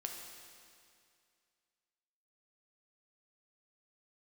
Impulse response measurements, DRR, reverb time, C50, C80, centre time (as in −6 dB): 1.5 dB, 2.3 s, 3.0 dB, 4.5 dB, 72 ms